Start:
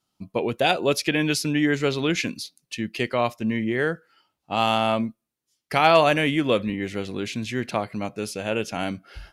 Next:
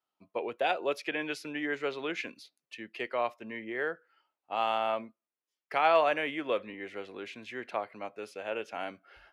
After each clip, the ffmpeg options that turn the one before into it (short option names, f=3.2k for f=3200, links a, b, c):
-filter_complex "[0:a]acrossover=split=360 2900:gain=0.0891 1 0.178[a][b][c];[a][b][c]amix=inputs=3:normalize=0,volume=-6.5dB"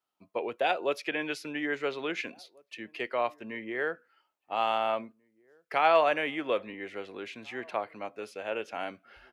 -filter_complex "[0:a]asplit=2[a][b];[b]adelay=1691,volume=-28dB,highshelf=f=4k:g=-38[c];[a][c]amix=inputs=2:normalize=0,volume=1.5dB"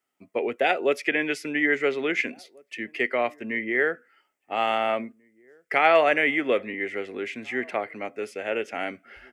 -af "equalizer=f=250:t=o:w=0.33:g=7,equalizer=f=400:t=o:w=0.33:g=5,equalizer=f=1k:t=o:w=0.33:g=-8,equalizer=f=2k:t=o:w=0.33:g=11,equalizer=f=4k:t=o:w=0.33:g=-7,equalizer=f=8k:t=o:w=0.33:g=5,volume=4.5dB"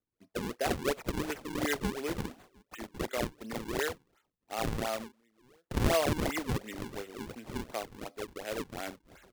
-af "acrusher=samples=40:mix=1:aa=0.000001:lfo=1:lforange=64:lforate=2.8,volume=-9dB"